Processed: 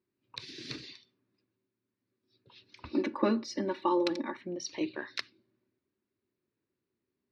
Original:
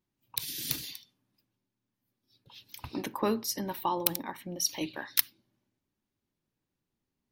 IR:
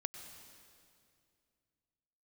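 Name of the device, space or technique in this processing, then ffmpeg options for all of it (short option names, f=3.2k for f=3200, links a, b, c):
guitar cabinet: -filter_complex "[0:a]highpass=100,equalizer=f=160:t=q:w=4:g=-7,equalizer=f=380:t=q:w=4:g=9,equalizer=f=800:t=q:w=4:g=-9,equalizer=f=3.2k:t=q:w=4:g=-9,lowpass=f=4.3k:w=0.5412,lowpass=f=4.3k:w=1.3066,asettb=1/sr,asplit=3[a][b][c];[a]atrim=end=2.854[d];[b]atrim=start=2.85:end=4.37,asetpts=PTS-STARTPTS,afade=t=in:d=0.004:c=qsin,afade=t=out:st=1.516:d=0.004:c=qsin,aecho=1:1:3.5:0.89,atrim=end_sample=67032[e];[c]atrim=start=4.366[f];[d][e]acrossfade=d=0.004:c1=hsin:c2=qsin[g];[g][f]acrossfade=d=0.004:c1=qsin:c2=hsin"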